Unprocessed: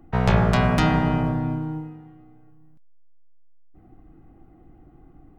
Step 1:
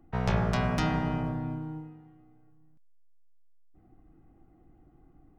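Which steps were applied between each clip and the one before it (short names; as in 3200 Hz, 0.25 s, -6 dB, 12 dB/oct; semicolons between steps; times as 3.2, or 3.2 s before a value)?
dynamic EQ 5600 Hz, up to +6 dB, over -55 dBFS, Q 3.6; gain -8.5 dB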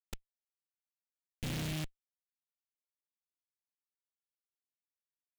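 flipped gate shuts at -24 dBFS, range -37 dB; Schmitt trigger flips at -39.5 dBFS; noise-modulated delay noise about 2600 Hz, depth 0.24 ms; gain +10 dB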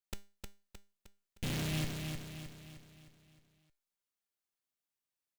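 resonator 200 Hz, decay 0.33 s, harmonics all, mix 60%; on a send: feedback echo 0.309 s, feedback 48%, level -5 dB; on the sum: gain +8 dB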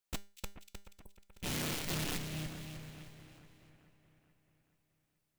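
wrapped overs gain 38 dB; spectral repair 0.92–1.2, 1100–7900 Hz; split-band echo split 2500 Hz, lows 0.43 s, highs 0.24 s, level -13 dB; gain +5 dB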